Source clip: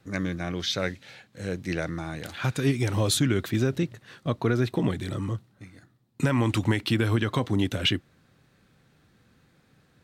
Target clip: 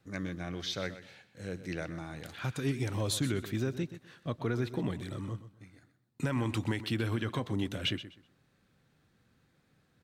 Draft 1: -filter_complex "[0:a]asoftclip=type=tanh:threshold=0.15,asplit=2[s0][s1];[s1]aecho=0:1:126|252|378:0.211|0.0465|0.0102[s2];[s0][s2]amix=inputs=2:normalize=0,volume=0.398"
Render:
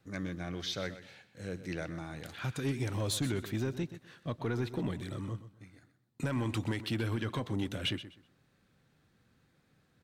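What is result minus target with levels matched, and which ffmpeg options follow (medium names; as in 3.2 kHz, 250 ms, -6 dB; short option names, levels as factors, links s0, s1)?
saturation: distortion +16 dB
-filter_complex "[0:a]asoftclip=type=tanh:threshold=0.447,asplit=2[s0][s1];[s1]aecho=0:1:126|252|378:0.211|0.0465|0.0102[s2];[s0][s2]amix=inputs=2:normalize=0,volume=0.398"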